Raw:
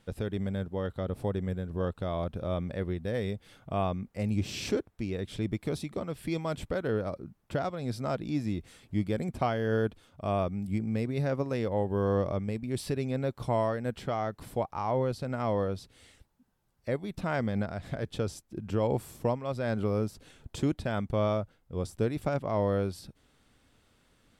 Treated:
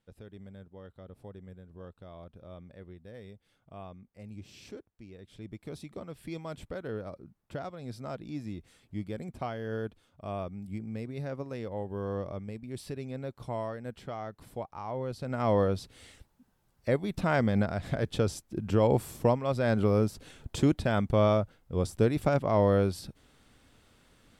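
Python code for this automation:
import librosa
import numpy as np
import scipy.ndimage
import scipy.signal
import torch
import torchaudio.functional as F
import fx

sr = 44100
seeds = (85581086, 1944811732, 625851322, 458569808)

y = fx.gain(x, sr, db=fx.line((5.19, -15.5), (5.89, -7.0), (14.99, -7.0), (15.53, 4.0)))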